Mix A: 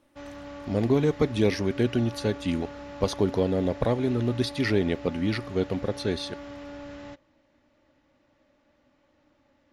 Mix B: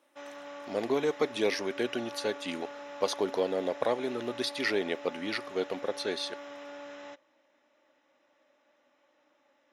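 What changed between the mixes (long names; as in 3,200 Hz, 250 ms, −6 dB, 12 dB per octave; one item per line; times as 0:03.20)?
background: add Butterworth band-reject 4,500 Hz, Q 7.4
master: add high-pass filter 470 Hz 12 dB per octave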